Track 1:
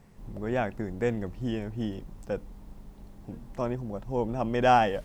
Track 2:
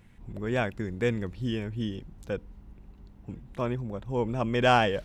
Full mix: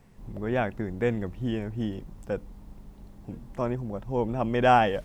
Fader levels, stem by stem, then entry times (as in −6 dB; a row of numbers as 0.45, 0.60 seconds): −1.0, −9.5 decibels; 0.00, 0.00 seconds